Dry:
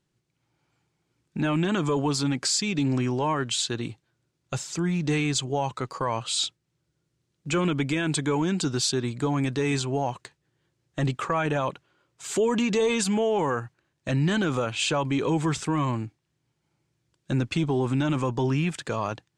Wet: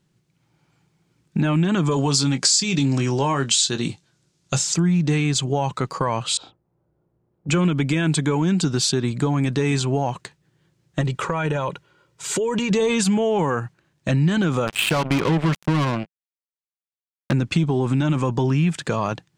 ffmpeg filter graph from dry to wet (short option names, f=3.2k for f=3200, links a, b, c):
-filter_complex "[0:a]asettb=1/sr,asplit=3[a][b][c];[a]atrim=end=1.914[d];[b]atrim=start=1.91:end=4.74,asetpts=PTS-STARTPTS,afade=t=in:d=0.004:c=qsin,afade=t=out:st=2.826:d=0.004:c=qsin,lowpass=7.2k,bass=f=250:g=-1,treble=f=4k:g=13,asplit=2[e][f];[f]adelay=22,volume=-10dB[g];[e][g]amix=inputs=2:normalize=0,atrim=end_sample=124803[h];[c]atrim=start=4.736[i];[d][h]acrossfade=d=0.004:c1=hsin:c2=qsin[j];[j][i]acrossfade=d=0.004:c1=qsin:c2=hsin,asettb=1/sr,asplit=3[k][l][m];[k]atrim=end=6.374[n];[l]atrim=start=6.37:end=7.49,asetpts=PTS-STARTPTS,afade=t=in:d=0.004:c=qsin,afade=t=out:st=1.116:d=0.004:c=qsin,lowpass=f=810:t=q:w=1.7,equalizer=f=150:w=1.6:g=-10,asplit=2[o][p];[p]adelay=33,volume=-3dB[q];[o][q]amix=inputs=2:normalize=0,atrim=end_sample=49392[r];[m]atrim=start=7.486[s];[n][r]acrossfade=d=0.004:c1=hsin:c2=qsin[t];[t][s]acrossfade=d=0.004:c1=qsin:c2=hsin,asettb=1/sr,asplit=3[u][v][w];[u]atrim=end=11.014[x];[v]atrim=start=11.01:end=12.71,asetpts=PTS-STARTPTS,afade=t=in:d=0.004:c=qsin,afade=t=out:st=1.696:d=0.004:c=qsin,aecho=1:1:2.1:0.44,atrim=end_sample=74970,acompressor=threshold=-27dB:ratio=4:attack=3.2:release=140:knee=1:detection=peak[y];[w]atrim=start=12.706[z];[x][y]acrossfade=d=0.004:c1=hsin:c2=qsin[aa];[aa][z]acrossfade=d=0.004:c1=qsin:c2=hsin,asettb=1/sr,asplit=3[ab][ac][ad];[ab]atrim=end=14.674[ae];[ac]atrim=start=14.67:end=17.33,asetpts=PTS-STARTPTS,afade=t=in:d=0.004:c=qsin,afade=t=out:st=2.656:d=0.004:c=qsin,aeval=exprs='val(0)+0.5*0.0141*sgn(val(0))':c=same,highshelf=f=4.1k:t=q:w=1.5:g=-13.5,acrusher=bits=3:mix=0:aa=0.5[af];[ad]atrim=start=17.326[ag];[ae][af]acrossfade=d=0.004:c1=hsin:c2=qsin[ah];[ah][ag]acrossfade=d=0.004:c1=qsin:c2=hsin,equalizer=f=170:w=2.4:g=7.5,acompressor=threshold=-24dB:ratio=3,volume=6.5dB"